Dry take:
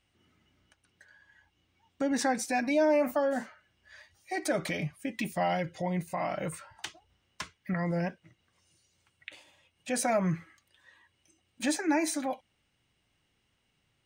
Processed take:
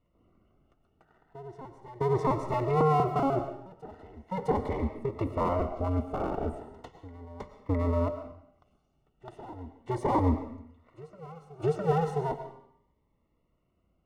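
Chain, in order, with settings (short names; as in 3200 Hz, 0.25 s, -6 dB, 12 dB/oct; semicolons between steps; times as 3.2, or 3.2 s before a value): cycle switcher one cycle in 2, inverted; polynomial smoothing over 65 samples; reverse echo 0.659 s -18 dB; digital reverb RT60 0.7 s, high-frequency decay 0.95×, pre-delay 70 ms, DRR 9 dB; cascading phaser rising 0.37 Hz; gain +4.5 dB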